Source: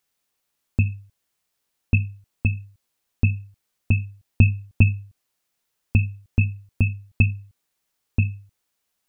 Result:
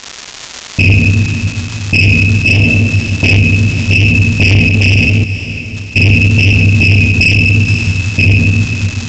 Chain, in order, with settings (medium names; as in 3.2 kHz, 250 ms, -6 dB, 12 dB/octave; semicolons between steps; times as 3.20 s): high-pass 230 Hz 6 dB/octave; spectral gate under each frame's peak -30 dB strong; simulated room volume 990 m³, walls mixed, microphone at 8.8 m; vibrato 0.82 Hz 21 cents; 2.48–3.37 s: peaking EQ 670 Hz +11 dB 2 oct; crackle 550 per s -28 dBFS; saturation -13.5 dBFS, distortion -8 dB; resampled via 16 kHz; 4.68–5.97 s: level held to a coarse grid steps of 20 dB; treble shelf 2 kHz +8 dB; echo that smears into a reverb 520 ms, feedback 43%, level -13.5 dB; loudness maximiser +12.5 dB; trim -1 dB